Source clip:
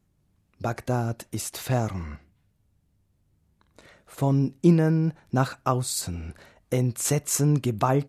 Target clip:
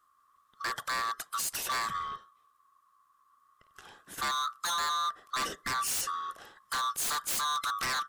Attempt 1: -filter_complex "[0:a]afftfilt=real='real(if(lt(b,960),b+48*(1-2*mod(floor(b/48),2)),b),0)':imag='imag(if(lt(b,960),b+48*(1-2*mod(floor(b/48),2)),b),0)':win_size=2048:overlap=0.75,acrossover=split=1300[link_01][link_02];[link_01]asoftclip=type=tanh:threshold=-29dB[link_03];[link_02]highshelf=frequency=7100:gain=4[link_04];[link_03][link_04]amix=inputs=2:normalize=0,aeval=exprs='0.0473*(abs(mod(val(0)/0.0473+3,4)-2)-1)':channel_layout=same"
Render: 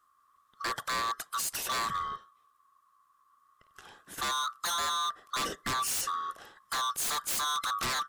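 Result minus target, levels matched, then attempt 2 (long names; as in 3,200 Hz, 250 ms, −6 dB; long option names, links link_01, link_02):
soft clipping: distortion −4 dB
-filter_complex "[0:a]afftfilt=real='real(if(lt(b,960),b+48*(1-2*mod(floor(b/48),2)),b),0)':imag='imag(if(lt(b,960),b+48*(1-2*mod(floor(b/48),2)),b),0)':win_size=2048:overlap=0.75,acrossover=split=1300[link_01][link_02];[link_01]asoftclip=type=tanh:threshold=-38dB[link_03];[link_02]highshelf=frequency=7100:gain=4[link_04];[link_03][link_04]amix=inputs=2:normalize=0,aeval=exprs='0.0473*(abs(mod(val(0)/0.0473+3,4)-2)-1)':channel_layout=same"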